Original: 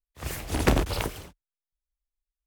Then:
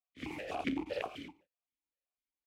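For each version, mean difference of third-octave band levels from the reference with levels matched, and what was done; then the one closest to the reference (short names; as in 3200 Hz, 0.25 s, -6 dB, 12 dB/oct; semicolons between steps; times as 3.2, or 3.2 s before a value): 9.5 dB: on a send: echo 0.146 s -23.5 dB; on the sum: compressor 6:1, threshold -32 dBFS, peak gain reduction 15.5 dB; vowel sequencer 7.8 Hz; gain +11.5 dB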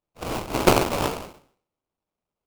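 4.5 dB: spectral trails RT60 0.50 s; HPF 590 Hz 6 dB/oct; sample-rate reducer 1800 Hz, jitter 20%; gain +6.5 dB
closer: second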